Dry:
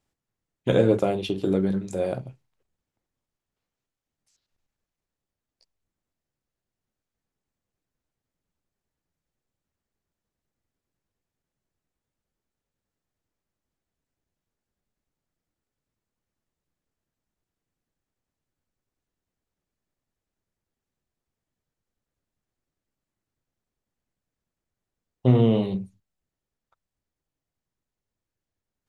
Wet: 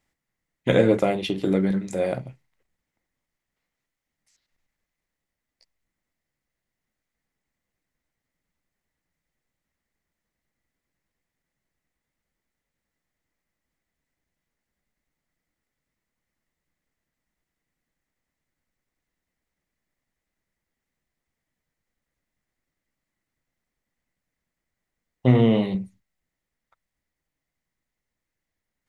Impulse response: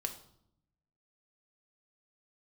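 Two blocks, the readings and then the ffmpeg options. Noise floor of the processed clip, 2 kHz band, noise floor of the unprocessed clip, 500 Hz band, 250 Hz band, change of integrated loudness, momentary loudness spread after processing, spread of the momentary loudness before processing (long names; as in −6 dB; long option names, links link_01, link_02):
−85 dBFS, +6.5 dB, below −85 dBFS, +1.0 dB, +2.0 dB, +1.5 dB, 12 LU, 13 LU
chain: -af "equalizer=frequency=100:width_type=o:width=0.33:gain=-9,equalizer=frequency=400:width_type=o:width=0.33:gain=-4,equalizer=frequency=2000:width_type=o:width=0.33:gain=11,volume=2.5dB"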